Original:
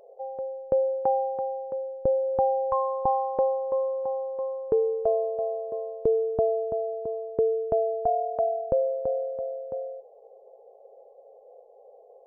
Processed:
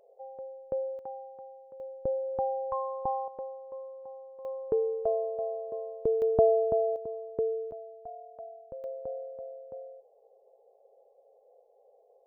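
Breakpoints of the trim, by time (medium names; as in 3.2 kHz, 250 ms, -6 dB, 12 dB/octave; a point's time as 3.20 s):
-9 dB
from 0.99 s -17 dB
from 1.80 s -7 dB
from 3.28 s -15.5 dB
from 4.45 s -4.5 dB
from 6.22 s +2 dB
from 6.96 s -6 dB
from 7.71 s -19 dB
from 8.84 s -10 dB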